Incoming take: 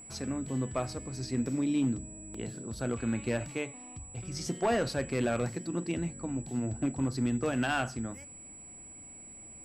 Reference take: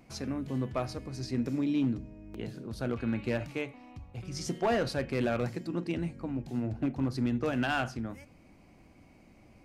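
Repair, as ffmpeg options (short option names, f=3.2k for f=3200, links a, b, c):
-af "bandreject=f=7.8k:w=30"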